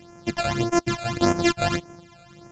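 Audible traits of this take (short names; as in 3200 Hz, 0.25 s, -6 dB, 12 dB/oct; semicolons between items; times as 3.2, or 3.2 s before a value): a buzz of ramps at a fixed pitch in blocks of 128 samples; phasing stages 12, 1.7 Hz, lowest notch 310–3900 Hz; Vorbis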